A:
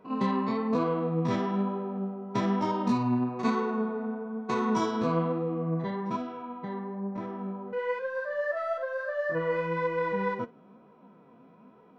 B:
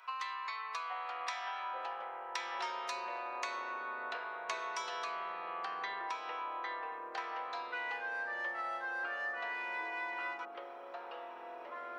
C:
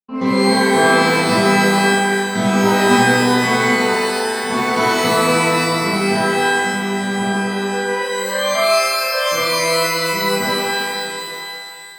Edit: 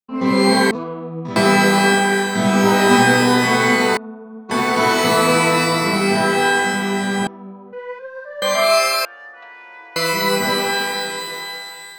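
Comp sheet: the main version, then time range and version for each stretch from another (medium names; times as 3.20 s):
C
0.71–1.36 s: from A
3.97–4.51 s: from A
7.27–8.42 s: from A
9.05–9.96 s: from B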